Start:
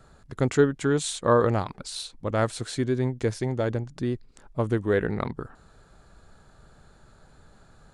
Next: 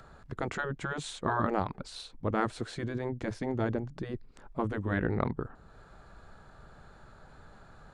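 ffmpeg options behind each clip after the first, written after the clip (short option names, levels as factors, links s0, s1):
-filter_complex "[0:a]lowpass=f=1600:p=1,afftfilt=real='re*lt(hypot(re,im),0.316)':imag='im*lt(hypot(re,im),0.316)':win_size=1024:overlap=0.75,acrossover=split=700[s0][s1];[s1]acompressor=mode=upward:threshold=0.00282:ratio=2.5[s2];[s0][s2]amix=inputs=2:normalize=0"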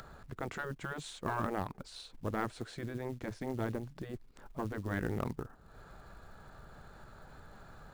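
-af "aeval=exprs='(tanh(7.94*val(0)+0.45)-tanh(0.45))/7.94':c=same,acompressor=mode=upward:threshold=0.01:ratio=2.5,acrusher=bits=6:mode=log:mix=0:aa=0.000001,volume=0.631"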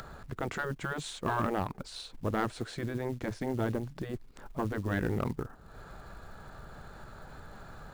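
-af "asoftclip=type=tanh:threshold=0.0631,volume=1.88"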